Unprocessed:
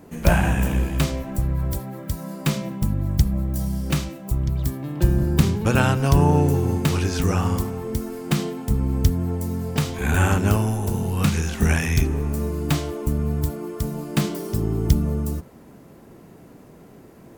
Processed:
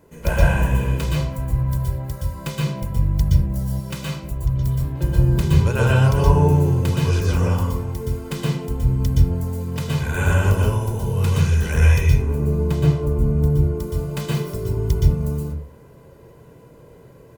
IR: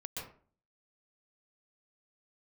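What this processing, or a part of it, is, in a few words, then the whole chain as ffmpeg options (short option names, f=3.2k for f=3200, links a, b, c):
microphone above a desk: -filter_complex "[0:a]asettb=1/sr,asplit=3[a][b][c];[a]atrim=end=12.224[d];[b]atrim=start=12.22:end=13.8,asetpts=PTS-STARTPTS,afade=t=in:d=0.004:c=qsin,afade=t=out:st=1.576:d=0.004:c=qsin,tiltshelf=f=860:g=5.5[e];[c]atrim=start=13.796[f];[d][e]acrossfade=d=0.004:c1=hsin:c2=qsin[g];[g][f]acrossfade=d=0.004:c1=qsin:c2=hsin,aecho=1:1:2:0.54[h];[1:a]atrim=start_sample=2205[i];[h][i]afir=irnorm=-1:irlink=0,asettb=1/sr,asplit=3[j][k][l];[j]atrim=end=3.804[m];[k]atrim=start=3.8:end=4.23,asetpts=PTS-STARTPTS,afade=t=in:d=0.004:c=qsin,afade=t=out:st=0.426:d=0.004:c=qsin,highpass=f=230:p=1[n];[l]atrim=start=4.226[o];[m][n]acrossfade=d=0.004:c1=hsin:c2=qsin[p];[p][o]acrossfade=d=0.004:c1=qsin:c2=hsin,volume=-1dB"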